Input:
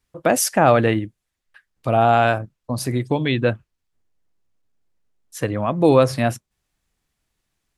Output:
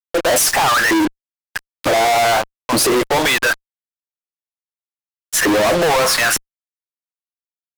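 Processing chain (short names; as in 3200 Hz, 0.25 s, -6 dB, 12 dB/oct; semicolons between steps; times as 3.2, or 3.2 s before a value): limiter -12.5 dBFS, peak gain reduction 10.5 dB; LFO high-pass saw up 1.1 Hz 310–1600 Hz; fuzz box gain 48 dB, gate -43 dBFS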